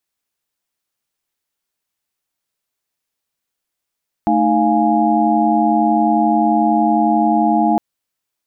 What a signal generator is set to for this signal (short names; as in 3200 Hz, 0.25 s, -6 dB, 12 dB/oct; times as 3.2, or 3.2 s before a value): chord A3/D#4/F5/G#5 sine, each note -17 dBFS 3.51 s